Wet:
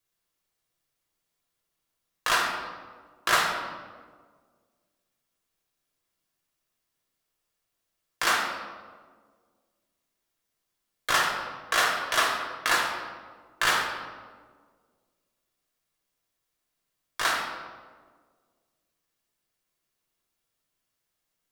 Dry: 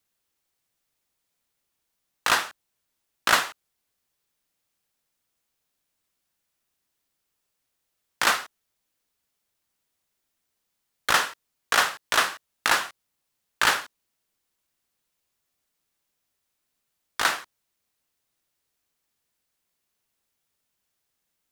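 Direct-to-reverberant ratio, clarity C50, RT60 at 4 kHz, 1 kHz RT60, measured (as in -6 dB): -1.5 dB, 3.0 dB, 0.90 s, 1.4 s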